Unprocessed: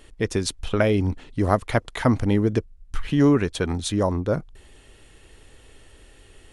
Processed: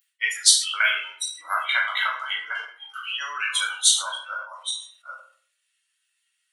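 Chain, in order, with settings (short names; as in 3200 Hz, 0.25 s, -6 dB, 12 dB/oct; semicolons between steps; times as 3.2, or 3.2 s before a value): reverse delay 0.428 s, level -7 dB; reverb removal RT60 0.63 s; HPF 1400 Hz 24 dB/oct; spectral noise reduction 29 dB; tilt +2.5 dB/oct; shoebox room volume 70 m³, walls mixed, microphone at 1.1 m; sustainer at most 120 dB/s; gain +4 dB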